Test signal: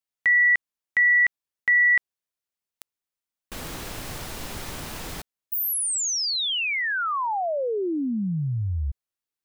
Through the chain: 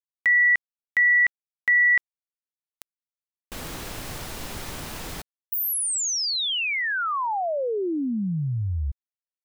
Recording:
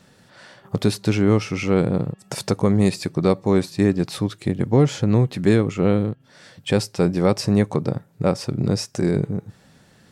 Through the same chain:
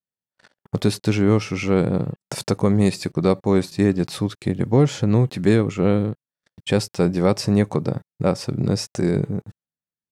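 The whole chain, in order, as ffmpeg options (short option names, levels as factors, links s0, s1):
-af "agate=range=0.00398:threshold=0.00562:ratio=16:release=20:detection=rms"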